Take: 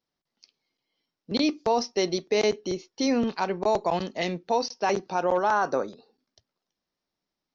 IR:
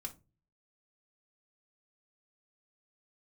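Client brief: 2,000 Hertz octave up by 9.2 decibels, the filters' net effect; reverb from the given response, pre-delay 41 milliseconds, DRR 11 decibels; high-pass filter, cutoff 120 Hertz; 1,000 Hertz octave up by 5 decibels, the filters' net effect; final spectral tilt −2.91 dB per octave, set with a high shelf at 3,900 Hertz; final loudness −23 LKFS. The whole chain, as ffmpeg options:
-filter_complex "[0:a]highpass=120,equalizer=frequency=1000:width_type=o:gain=4,equalizer=frequency=2000:width_type=o:gain=9,highshelf=frequency=3900:gain=7,asplit=2[link_01][link_02];[1:a]atrim=start_sample=2205,adelay=41[link_03];[link_02][link_03]afir=irnorm=-1:irlink=0,volume=-8dB[link_04];[link_01][link_04]amix=inputs=2:normalize=0,volume=-0.5dB"

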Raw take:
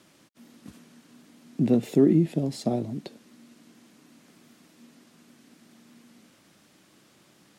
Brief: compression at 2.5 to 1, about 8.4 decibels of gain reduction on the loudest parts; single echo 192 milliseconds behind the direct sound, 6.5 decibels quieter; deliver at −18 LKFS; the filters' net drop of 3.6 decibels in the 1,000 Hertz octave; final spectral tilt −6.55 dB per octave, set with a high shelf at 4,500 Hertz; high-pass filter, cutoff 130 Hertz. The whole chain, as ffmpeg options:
ffmpeg -i in.wav -af "highpass=130,equalizer=frequency=1000:width_type=o:gain=-6.5,highshelf=frequency=4500:gain=3.5,acompressor=threshold=-28dB:ratio=2.5,aecho=1:1:192:0.473,volume=13.5dB" out.wav

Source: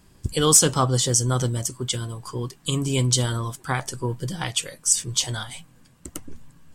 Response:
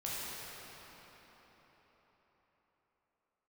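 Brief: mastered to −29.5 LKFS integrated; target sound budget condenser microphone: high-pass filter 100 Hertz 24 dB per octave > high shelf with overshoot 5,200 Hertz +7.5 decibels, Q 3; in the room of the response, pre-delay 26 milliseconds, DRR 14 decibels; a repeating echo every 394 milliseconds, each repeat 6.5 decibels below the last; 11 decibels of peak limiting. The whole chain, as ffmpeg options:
-filter_complex "[0:a]alimiter=limit=-15.5dB:level=0:latency=1,aecho=1:1:394|788|1182|1576|1970|2364:0.473|0.222|0.105|0.0491|0.0231|0.0109,asplit=2[link_01][link_02];[1:a]atrim=start_sample=2205,adelay=26[link_03];[link_02][link_03]afir=irnorm=-1:irlink=0,volume=-18dB[link_04];[link_01][link_04]amix=inputs=2:normalize=0,highpass=frequency=100:width=0.5412,highpass=frequency=100:width=1.3066,highshelf=frequency=5200:width_type=q:width=3:gain=7.5,volume=-10dB"

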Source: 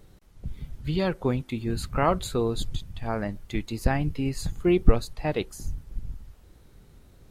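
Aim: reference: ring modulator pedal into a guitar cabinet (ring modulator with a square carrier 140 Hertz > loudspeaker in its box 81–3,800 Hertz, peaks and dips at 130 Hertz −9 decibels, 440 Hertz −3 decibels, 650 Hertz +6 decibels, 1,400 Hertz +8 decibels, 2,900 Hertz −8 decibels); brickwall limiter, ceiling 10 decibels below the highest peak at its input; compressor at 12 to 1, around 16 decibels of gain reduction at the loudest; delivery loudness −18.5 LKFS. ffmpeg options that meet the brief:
ffmpeg -i in.wav -af "acompressor=threshold=-25dB:ratio=12,alimiter=level_in=3dB:limit=-24dB:level=0:latency=1,volume=-3dB,aeval=exprs='val(0)*sgn(sin(2*PI*140*n/s))':channel_layout=same,highpass=81,equalizer=frequency=130:width_type=q:width=4:gain=-9,equalizer=frequency=440:width_type=q:width=4:gain=-3,equalizer=frequency=650:width_type=q:width=4:gain=6,equalizer=frequency=1400:width_type=q:width=4:gain=8,equalizer=frequency=2900:width_type=q:width=4:gain=-8,lowpass=frequency=3800:width=0.5412,lowpass=frequency=3800:width=1.3066,volume=19dB" out.wav

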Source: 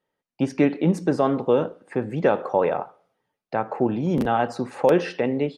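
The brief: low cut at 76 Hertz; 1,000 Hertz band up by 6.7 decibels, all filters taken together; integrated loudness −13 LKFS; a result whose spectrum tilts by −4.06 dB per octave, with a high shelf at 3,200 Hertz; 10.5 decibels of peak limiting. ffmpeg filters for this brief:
ffmpeg -i in.wav -af "highpass=76,equalizer=frequency=1000:width_type=o:gain=8.5,highshelf=frequency=3200:gain=4.5,volume=12dB,alimiter=limit=-0.5dB:level=0:latency=1" out.wav

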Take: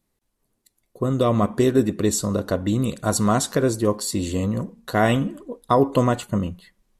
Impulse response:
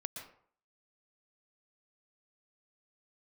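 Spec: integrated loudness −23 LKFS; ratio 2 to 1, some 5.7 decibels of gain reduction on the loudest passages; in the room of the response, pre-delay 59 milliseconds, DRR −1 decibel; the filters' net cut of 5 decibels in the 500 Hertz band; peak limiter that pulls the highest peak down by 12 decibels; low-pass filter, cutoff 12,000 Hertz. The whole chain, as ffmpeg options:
-filter_complex "[0:a]lowpass=12000,equalizer=frequency=500:width_type=o:gain=-6.5,acompressor=threshold=-26dB:ratio=2,alimiter=level_in=1dB:limit=-24dB:level=0:latency=1,volume=-1dB,asplit=2[link_01][link_02];[1:a]atrim=start_sample=2205,adelay=59[link_03];[link_02][link_03]afir=irnorm=-1:irlink=0,volume=2.5dB[link_04];[link_01][link_04]amix=inputs=2:normalize=0,volume=8dB"

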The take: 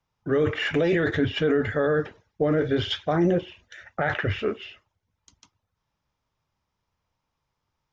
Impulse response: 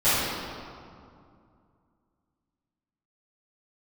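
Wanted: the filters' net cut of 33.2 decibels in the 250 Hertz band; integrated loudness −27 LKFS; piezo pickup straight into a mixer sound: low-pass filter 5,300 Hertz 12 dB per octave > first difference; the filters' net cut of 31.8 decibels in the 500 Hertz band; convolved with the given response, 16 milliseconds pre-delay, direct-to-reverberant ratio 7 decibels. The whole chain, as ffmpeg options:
-filter_complex "[0:a]equalizer=frequency=250:width_type=o:gain=-3.5,equalizer=frequency=500:width_type=o:gain=-9,asplit=2[link_01][link_02];[1:a]atrim=start_sample=2205,adelay=16[link_03];[link_02][link_03]afir=irnorm=-1:irlink=0,volume=-25.5dB[link_04];[link_01][link_04]amix=inputs=2:normalize=0,lowpass=5300,aderivative,volume=15.5dB"

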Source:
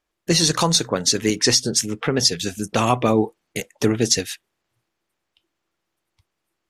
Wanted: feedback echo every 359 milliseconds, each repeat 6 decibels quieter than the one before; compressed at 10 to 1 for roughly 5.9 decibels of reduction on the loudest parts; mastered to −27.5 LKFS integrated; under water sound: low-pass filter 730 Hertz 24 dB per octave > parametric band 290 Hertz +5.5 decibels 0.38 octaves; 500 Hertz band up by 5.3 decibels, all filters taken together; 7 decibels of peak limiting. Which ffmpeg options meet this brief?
ffmpeg -i in.wav -af "equalizer=frequency=500:width_type=o:gain=6,acompressor=threshold=-16dB:ratio=10,alimiter=limit=-12.5dB:level=0:latency=1,lowpass=frequency=730:width=0.5412,lowpass=frequency=730:width=1.3066,equalizer=frequency=290:width_type=o:width=0.38:gain=5.5,aecho=1:1:359|718|1077|1436|1795|2154:0.501|0.251|0.125|0.0626|0.0313|0.0157,volume=-2.5dB" out.wav

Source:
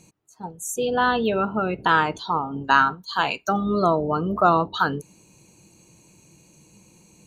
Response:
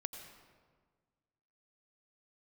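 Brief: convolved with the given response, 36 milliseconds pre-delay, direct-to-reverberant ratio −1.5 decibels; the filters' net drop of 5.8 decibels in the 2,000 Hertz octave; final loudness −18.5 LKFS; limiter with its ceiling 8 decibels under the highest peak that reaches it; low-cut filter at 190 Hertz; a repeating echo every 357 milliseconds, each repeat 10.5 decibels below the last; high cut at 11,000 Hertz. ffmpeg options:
-filter_complex "[0:a]highpass=190,lowpass=11000,equalizer=frequency=2000:width_type=o:gain=-9,alimiter=limit=-15dB:level=0:latency=1,aecho=1:1:357|714|1071:0.299|0.0896|0.0269,asplit=2[link_01][link_02];[1:a]atrim=start_sample=2205,adelay=36[link_03];[link_02][link_03]afir=irnorm=-1:irlink=0,volume=3dB[link_04];[link_01][link_04]amix=inputs=2:normalize=0,volume=4dB"

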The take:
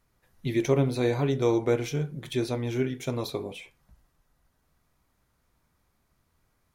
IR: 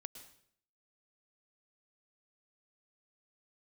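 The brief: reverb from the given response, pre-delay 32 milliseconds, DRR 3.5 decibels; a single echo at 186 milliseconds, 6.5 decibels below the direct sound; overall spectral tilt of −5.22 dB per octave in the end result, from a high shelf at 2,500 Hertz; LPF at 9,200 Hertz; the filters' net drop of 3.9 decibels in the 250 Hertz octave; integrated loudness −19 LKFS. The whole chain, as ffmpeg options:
-filter_complex "[0:a]lowpass=9200,equalizer=frequency=250:width_type=o:gain=-6,highshelf=frequency=2500:gain=7,aecho=1:1:186:0.473,asplit=2[link_01][link_02];[1:a]atrim=start_sample=2205,adelay=32[link_03];[link_02][link_03]afir=irnorm=-1:irlink=0,volume=1.5dB[link_04];[link_01][link_04]amix=inputs=2:normalize=0,volume=7.5dB"

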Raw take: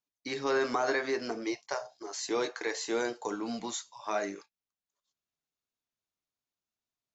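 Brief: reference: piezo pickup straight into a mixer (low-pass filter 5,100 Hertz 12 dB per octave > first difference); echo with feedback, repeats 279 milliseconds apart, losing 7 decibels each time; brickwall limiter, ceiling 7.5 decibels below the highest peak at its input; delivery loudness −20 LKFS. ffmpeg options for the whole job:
ffmpeg -i in.wav -af "alimiter=level_in=1dB:limit=-24dB:level=0:latency=1,volume=-1dB,lowpass=5100,aderivative,aecho=1:1:279|558|837|1116|1395:0.447|0.201|0.0905|0.0407|0.0183,volume=28dB" out.wav

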